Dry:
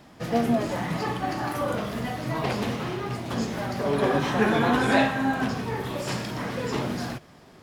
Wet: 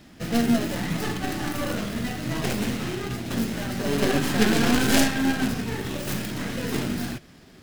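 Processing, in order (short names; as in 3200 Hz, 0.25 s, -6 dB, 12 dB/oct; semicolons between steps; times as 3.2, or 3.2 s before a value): tracing distortion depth 0.42 ms; in parallel at -7 dB: sample-and-hold 38×; on the sum: ten-band EQ 125 Hz -6 dB, 500 Hz -6 dB, 1000 Hz -8 dB; gain +3 dB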